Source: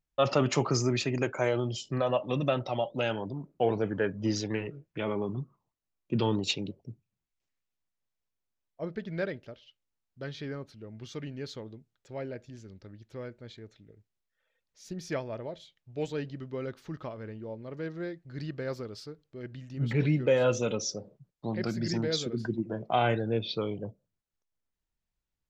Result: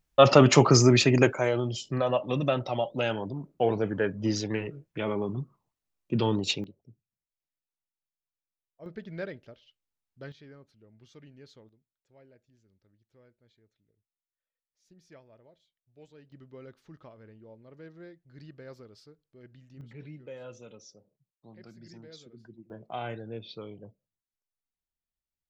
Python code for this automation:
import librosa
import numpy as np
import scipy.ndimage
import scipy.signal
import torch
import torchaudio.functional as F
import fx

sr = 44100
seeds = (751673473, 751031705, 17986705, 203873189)

y = fx.gain(x, sr, db=fx.steps((0.0, 9.0), (1.33, 1.5), (6.64, -11.0), (8.86, -4.0), (10.32, -13.0), (11.69, -20.0), (16.32, -11.0), (19.81, -19.0), (22.7, -10.0)))